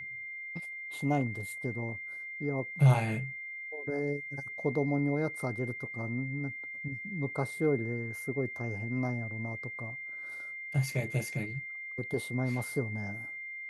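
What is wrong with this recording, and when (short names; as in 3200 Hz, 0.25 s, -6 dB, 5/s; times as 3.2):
tone 2100 Hz -39 dBFS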